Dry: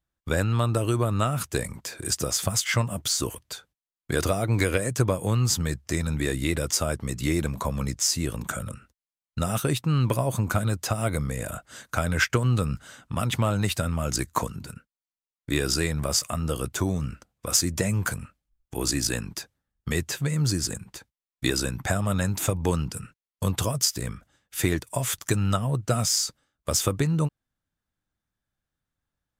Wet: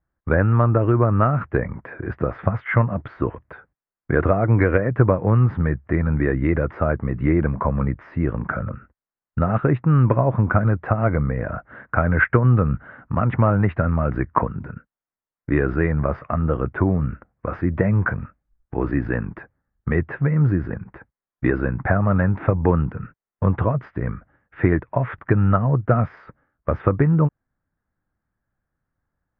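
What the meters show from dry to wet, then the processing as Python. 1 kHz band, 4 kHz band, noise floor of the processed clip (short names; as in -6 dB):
+7.0 dB, under -25 dB, under -85 dBFS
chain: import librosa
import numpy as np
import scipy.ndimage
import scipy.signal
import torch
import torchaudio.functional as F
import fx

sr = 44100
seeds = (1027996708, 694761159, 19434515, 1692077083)

y = scipy.signal.sosfilt(scipy.signal.butter(6, 1900.0, 'lowpass', fs=sr, output='sos'), x)
y = y * 10.0 ** (7.0 / 20.0)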